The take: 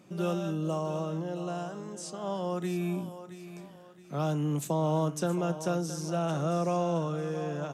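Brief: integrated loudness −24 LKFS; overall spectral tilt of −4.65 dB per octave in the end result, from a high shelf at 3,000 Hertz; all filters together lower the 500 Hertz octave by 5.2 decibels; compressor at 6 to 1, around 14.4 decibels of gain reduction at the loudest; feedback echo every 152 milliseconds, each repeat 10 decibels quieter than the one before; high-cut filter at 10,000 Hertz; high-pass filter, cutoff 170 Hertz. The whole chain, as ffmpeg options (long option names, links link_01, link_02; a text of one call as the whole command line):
ffmpeg -i in.wav -af "highpass=170,lowpass=10000,equalizer=frequency=500:width_type=o:gain=-7,highshelf=frequency=3000:gain=6.5,acompressor=threshold=-45dB:ratio=6,aecho=1:1:152|304|456|608:0.316|0.101|0.0324|0.0104,volume=23dB" out.wav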